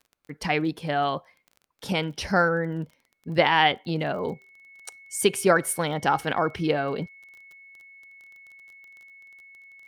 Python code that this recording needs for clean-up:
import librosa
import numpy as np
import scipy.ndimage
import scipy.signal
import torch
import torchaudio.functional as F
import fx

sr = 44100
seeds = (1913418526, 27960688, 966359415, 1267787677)

y = fx.fix_declick_ar(x, sr, threshold=6.5)
y = fx.notch(y, sr, hz=2200.0, q=30.0)